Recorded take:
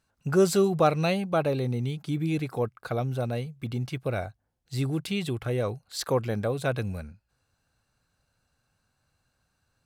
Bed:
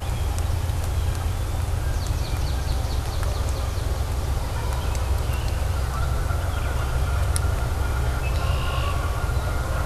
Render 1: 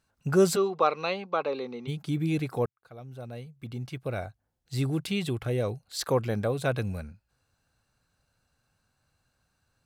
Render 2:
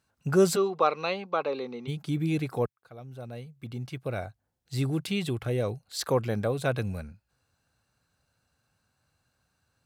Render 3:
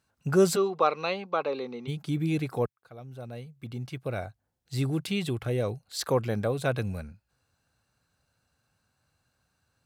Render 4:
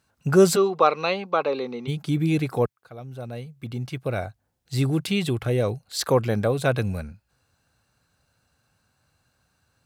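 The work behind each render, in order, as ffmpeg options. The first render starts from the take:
-filter_complex "[0:a]asplit=3[a][b][c];[a]afade=t=out:st=0.55:d=0.02[d];[b]highpass=f=270:w=0.5412,highpass=f=270:w=1.3066,equalizer=f=310:t=q:w=4:g=-9,equalizer=f=660:t=q:w=4:g=-7,equalizer=f=1.1k:t=q:w=4:g=6,equalizer=f=1.7k:t=q:w=4:g=-5,equalizer=f=3.1k:t=q:w=4:g=-3,lowpass=f=4.8k:w=0.5412,lowpass=f=4.8k:w=1.3066,afade=t=in:st=0.55:d=0.02,afade=t=out:st=1.87:d=0.02[e];[c]afade=t=in:st=1.87:d=0.02[f];[d][e][f]amix=inputs=3:normalize=0,asettb=1/sr,asplit=3[g][h][i];[g]atrim=end=5.454[j];[h]atrim=start=5.45:end=6,asetpts=PTS-STARTPTS,afade=t=in:d=0.004:c=qsin,afade=t=out:st=0.546:d=0.004:c=qsin,equalizer=f=1.2k:t=o:w=1.1:g=-4.5[k];[i]atrim=start=5.996[l];[j][k]acrossfade=d=0.004:c1=hsin:c2=qsin[m];[m][l]acrossfade=d=0.004:c1=qsin:c2=hsin,asplit=2[n][o];[n]atrim=end=2.66,asetpts=PTS-STARTPTS,afade=t=out:st=2.656:d=0.004:c=hsin[p];[o]atrim=start=2.66,asetpts=PTS-STARTPTS,afade=t=in:d=2.11[q];[p][q]concat=n=2:v=0:a=1"
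-af "highpass=54"
-af anull
-af "volume=5.5dB"

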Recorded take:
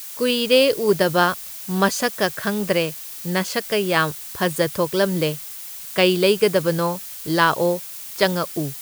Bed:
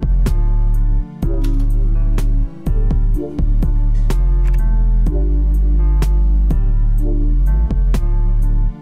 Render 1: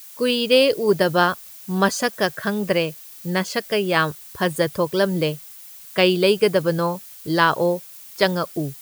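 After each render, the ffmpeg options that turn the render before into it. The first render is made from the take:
-af "afftdn=nr=8:nf=-35"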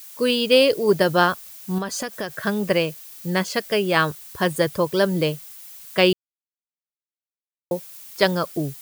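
-filter_complex "[0:a]asettb=1/sr,asplit=3[a][b][c];[a]atrim=end=1.784[d];[b]atrim=start=1.78:end=2.33,asetpts=PTS-STARTPTS,afade=t=in:d=0.004:c=qsin,afade=t=out:st=0.546:d=0.004:c=qsin,acompressor=threshold=-23dB:ratio=12:attack=3.2:release=140:knee=1:detection=peak[e];[c]atrim=start=2.326[f];[d][e]acrossfade=d=0.004:c1=hsin:c2=qsin[g];[g][f]acrossfade=d=0.004:c1=qsin:c2=hsin,asplit=3[h][i][j];[h]atrim=end=6.13,asetpts=PTS-STARTPTS,afade=t=out:st=6.126:d=0.004:c=hsin[k];[i]atrim=start=6.13:end=7.71,asetpts=PTS-STARTPTS,volume=0[l];[j]atrim=start=7.71,asetpts=PTS-STARTPTS,afade=t=in:d=0.004:c=hsin[m];[k][l][m]concat=n=3:v=0:a=1"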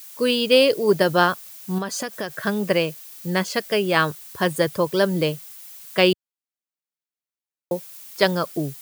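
-af "highpass=100"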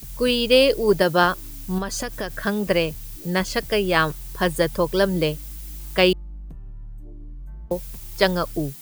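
-filter_complex "[1:a]volume=-23.5dB[a];[0:a][a]amix=inputs=2:normalize=0"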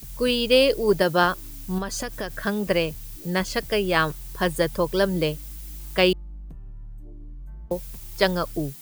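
-af "volume=-2dB"

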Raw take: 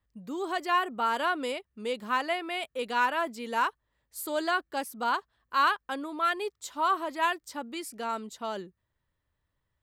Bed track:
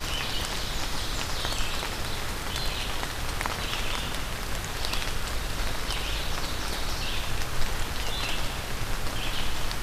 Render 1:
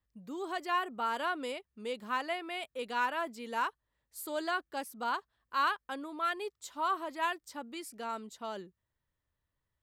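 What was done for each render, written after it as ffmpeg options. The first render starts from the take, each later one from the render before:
-af "volume=-5.5dB"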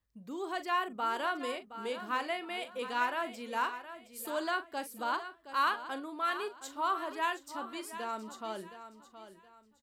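-filter_complex "[0:a]asplit=2[a][b];[b]adelay=41,volume=-12dB[c];[a][c]amix=inputs=2:normalize=0,asplit=2[d][e];[e]aecho=0:1:719|1438|2157:0.251|0.0779|0.0241[f];[d][f]amix=inputs=2:normalize=0"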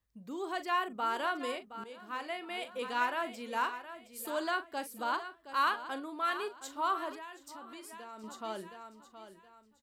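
-filter_complex "[0:a]asettb=1/sr,asplit=3[a][b][c];[a]atrim=end=7.154[d];[b]atrim=start=7.15:end=8.24,asetpts=PTS-STARTPTS,afade=t=in:d=0.004:c=qsin,afade=t=out:st=1.086:d=0.004:c=qsin,acompressor=threshold=-45dB:ratio=4:attack=3.2:release=140:knee=1:detection=peak[e];[c]atrim=start=8.236[f];[d][e]acrossfade=d=0.004:c1=hsin:c2=qsin[g];[g][f]acrossfade=d=0.004:c1=qsin:c2=hsin,asplit=2[h][i];[h]atrim=end=1.84,asetpts=PTS-STARTPTS,afade=t=out:st=1.836:d=0.004:c=hsin:silence=0.188365[j];[i]atrim=start=1.84,asetpts=PTS-STARTPTS,afade=t=in:d=0.81:silence=0.188365[k];[j][k]concat=n=2:v=0:a=1"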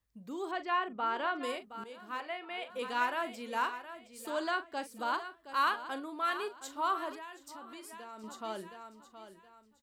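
-filter_complex "[0:a]asettb=1/sr,asplit=3[a][b][c];[a]atrim=end=0.514[d];[b]atrim=start=0.51:end=1.43,asetpts=PTS-STARTPTS,afade=t=in:d=0.004:c=qsin,afade=t=out:st=0.916:d=0.004:c=qsin,lowpass=3.5k[e];[c]atrim=start=1.426[f];[d][e]acrossfade=d=0.004:c1=hsin:c2=qsin[g];[g][f]acrossfade=d=0.004:c1=qsin:c2=hsin,asettb=1/sr,asplit=3[h][i][j];[h]atrim=end=2.204[k];[i]atrim=start=2.2:end=2.7,asetpts=PTS-STARTPTS,afade=t=in:d=0.004:c=qsin,afade=t=out:st=0.496:d=0.004:c=qsin,acrossover=split=340 3900:gain=0.224 1 0.2[l][m][n];[l][m][n]amix=inputs=3:normalize=0[o];[j]atrim=start=2.696[p];[k][o]acrossfade=d=0.004:c1=hsin:c2=qsin[q];[q][p]acrossfade=d=0.004:c1=qsin:c2=hsin,asettb=1/sr,asplit=3[r][s][t];[r]atrim=end=3.994[u];[s]atrim=start=3.99:end=5,asetpts=PTS-STARTPTS,afade=t=in:d=0.004:c=qsin,afade=t=out:st=1.006:d=0.004:c=qsin,equalizer=f=12k:t=o:w=0.37:g=-14.5[v];[t]atrim=start=4.996[w];[u][v]acrossfade=d=0.004:c1=hsin:c2=qsin[x];[x][w]acrossfade=d=0.004:c1=qsin:c2=hsin"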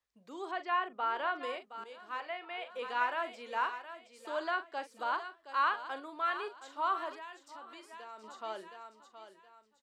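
-filter_complex "[0:a]acrossover=split=3100[a][b];[b]acompressor=threshold=-53dB:ratio=4:attack=1:release=60[c];[a][c]amix=inputs=2:normalize=0,acrossover=split=360 7800:gain=0.141 1 0.178[d][e][f];[d][e][f]amix=inputs=3:normalize=0"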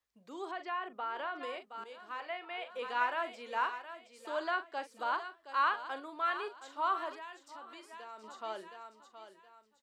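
-filter_complex "[0:a]asettb=1/sr,asplit=3[a][b][c];[a]atrim=end=0.444[d];[b]atrim=start=0.44:end=2.22,asetpts=PTS-STARTPTS,afade=t=in:d=0.004:c=qsin,afade=t=out:st=1.776:d=0.004:c=qsin,acompressor=threshold=-37dB:ratio=2:attack=3.2:release=140:knee=1:detection=peak[e];[c]atrim=start=2.216[f];[d][e]acrossfade=d=0.004:c1=hsin:c2=qsin[g];[g][f]acrossfade=d=0.004:c1=qsin:c2=hsin"

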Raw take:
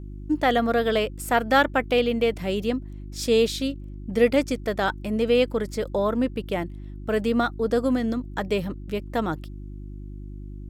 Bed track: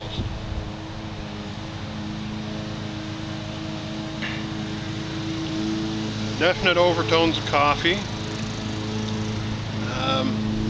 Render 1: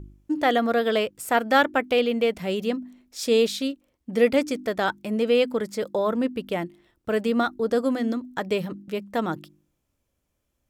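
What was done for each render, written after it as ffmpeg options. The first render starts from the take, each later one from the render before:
-af "bandreject=f=50:t=h:w=4,bandreject=f=100:t=h:w=4,bandreject=f=150:t=h:w=4,bandreject=f=200:t=h:w=4,bandreject=f=250:t=h:w=4,bandreject=f=300:t=h:w=4,bandreject=f=350:t=h:w=4"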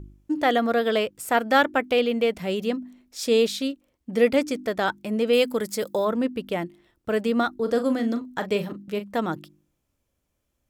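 -filter_complex "[0:a]asettb=1/sr,asplit=3[a][b][c];[a]atrim=end=5.334[d];[b]atrim=start=5.33:end=6.05,asetpts=PTS-STARTPTS,afade=t=in:d=0.004:c=qsin,afade=t=out:st=0.716:d=0.004:c=qsin,aemphasis=mode=production:type=50kf[e];[c]atrim=start=6.046[f];[d][e]acrossfade=d=0.004:c1=hsin:c2=qsin[g];[g][f]acrossfade=d=0.004:c1=qsin:c2=hsin,asettb=1/sr,asplit=3[h][i][j];[h]atrim=end=7.564[k];[i]atrim=start=7.56:end=9.13,asetpts=PTS-STARTPTS,afade=t=in:d=0.004:c=qsin,afade=t=out:st=1.566:d=0.004:c=qsin,asplit=2[l][m];[m]adelay=39,volume=-10dB[n];[l][n]amix=inputs=2:normalize=0,atrim=end_sample=69237[o];[j]atrim=start=9.126[p];[k][o]acrossfade=d=0.004:c1=hsin:c2=qsin[q];[q][p]acrossfade=d=0.004:c1=qsin:c2=hsin"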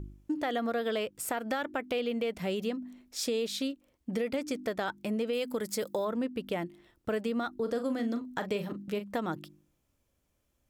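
-af "alimiter=limit=-15.5dB:level=0:latency=1:release=116,acompressor=threshold=-32dB:ratio=2.5"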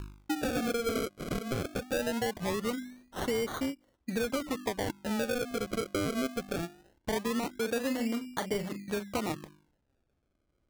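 -af "acrusher=samples=33:mix=1:aa=0.000001:lfo=1:lforange=33:lforate=0.21"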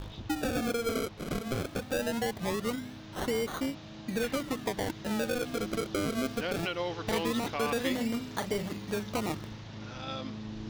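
-filter_complex "[1:a]volume=-15.5dB[a];[0:a][a]amix=inputs=2:normalize=0"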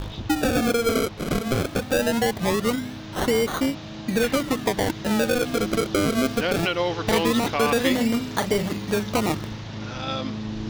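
-af "volume=9.5dB"

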